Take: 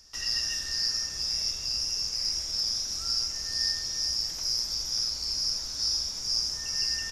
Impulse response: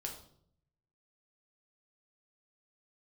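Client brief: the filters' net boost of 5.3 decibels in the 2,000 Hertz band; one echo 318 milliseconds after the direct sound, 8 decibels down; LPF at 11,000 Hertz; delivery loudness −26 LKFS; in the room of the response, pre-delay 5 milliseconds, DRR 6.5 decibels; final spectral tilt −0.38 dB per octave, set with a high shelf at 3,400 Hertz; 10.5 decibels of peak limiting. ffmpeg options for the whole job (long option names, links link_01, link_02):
-filter_complex "[0:a]lowpass=11000,equalizer=frequency=2000:width_type=o:gain=4,highshelf=frequency=3400:gain=7.5,alimiter=limit=-20.5dB:level=0:latency=1,aecho=1:1:318:0.398,asplit=2[link_01][link_02];[1:a]atrim=start_sample=2205,adelay=5[link_03];[link_02][link_03]afir=irnorm=-1:irlink=0,volume=-5dB[link_04];[link_01][link_04]amix=inputs=2:normalize=0,volume=-1.5dB"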